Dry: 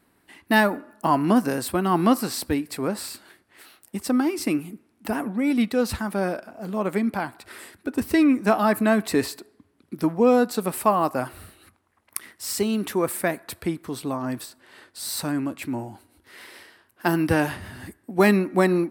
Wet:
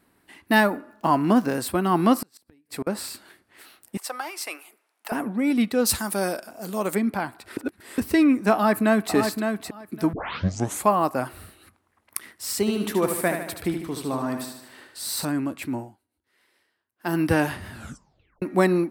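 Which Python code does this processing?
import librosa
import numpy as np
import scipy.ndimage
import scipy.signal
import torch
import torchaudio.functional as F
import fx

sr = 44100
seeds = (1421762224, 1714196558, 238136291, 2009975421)

y = fx.median_filter(x, sr, points=5, at=(0.92, 1.55))
y = fx.gate_flip(y, sr, shuts_db=-19.0, range_db=-35, at=(2.16, 2.87))
y = fx.highpass(y, sr, hz=610.0, slope=24, at=(3.97, 5.12))
y = fx.bass_treble(y, sr, bass_db=-4, treble_db=14, at=(5.85, 6.94), fade=0.02)
y = fx.echo_throw(y, sr, start_s=8.53, length_s=0.61, ms=560, feedback_pct=15, wet_db=-6.0)
y = fx.echo_feedback(y, sr, ms=75, feedback_pct=54, wet_db=-6.5, at=(12.59, 15.25))
y = fx.edit(y, sr, fx.reverse_span(start_s=7.57, length_s=0.41),
    fx.tape_start(start_s=10.13, length_s=0.77),
    fx.fade_down_up(start_s=15.75, length_s=1.44, db=-21.5, fade_s=0.21),
    fx.tape_stop(start_s=17.73, length_s=0.69), tone=tone)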